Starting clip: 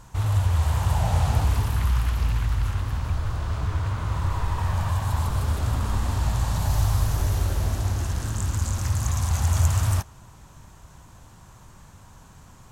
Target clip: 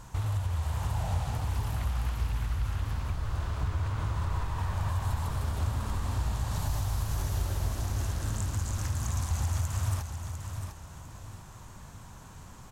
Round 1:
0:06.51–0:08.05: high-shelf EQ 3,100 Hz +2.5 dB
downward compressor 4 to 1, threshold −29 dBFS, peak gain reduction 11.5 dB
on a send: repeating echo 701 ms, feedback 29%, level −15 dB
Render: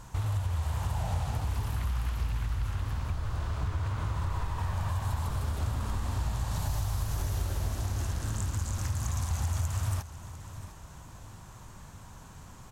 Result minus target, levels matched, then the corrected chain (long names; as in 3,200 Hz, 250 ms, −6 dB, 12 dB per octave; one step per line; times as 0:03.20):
echo-to-direct −7.5 dB
0:06.51–0:08.05: high-shelf EQ 3,100 Hz +2.5 dB
downward compressor 4 to 1, threshold −29 dBFS, peak gain reduction 11.5 dB
on a send: repeating echo 701 ms, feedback 29%, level −7.5 dB